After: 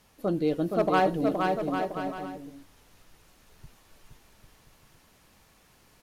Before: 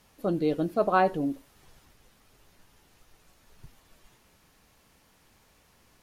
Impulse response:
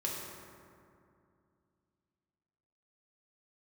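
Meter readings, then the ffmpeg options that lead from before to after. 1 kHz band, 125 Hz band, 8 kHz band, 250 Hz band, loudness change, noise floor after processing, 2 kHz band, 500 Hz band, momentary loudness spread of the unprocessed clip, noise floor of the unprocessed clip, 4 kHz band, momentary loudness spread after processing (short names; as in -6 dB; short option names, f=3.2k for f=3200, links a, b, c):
+1.0 dB, +2.0 dB, +4.0 dB, +2.0 dB, -0.5 dB, -61 dBFS, +1.5 dB, +1.5 dB, 9 LU, -63 dBFS, +5.0 dB, 15 LU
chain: -af "asoftclip=type=hard:threshold=-17dB,aecho=1:1:470|799|1029|1191|1303:0.631|0.398|0.251|0.158|0.1"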